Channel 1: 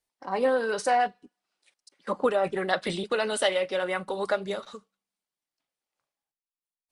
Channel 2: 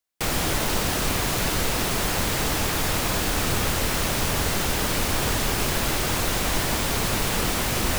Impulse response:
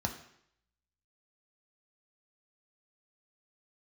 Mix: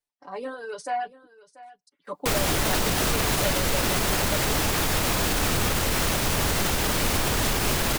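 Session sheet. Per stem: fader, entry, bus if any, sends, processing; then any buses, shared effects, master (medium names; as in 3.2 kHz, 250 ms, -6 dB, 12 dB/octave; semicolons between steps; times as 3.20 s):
-7.5 dB, 0.00 s, no send, echo send -18.5 dB, reverb removal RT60 0.92 s; comb 6.9 ms, depth 61%
+2.5 dB, 2.05 s, no send, no echo send, peak limiter -16.5 dBFS, peak gain reduction 6 dB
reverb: none
echo: delay 687 ms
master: none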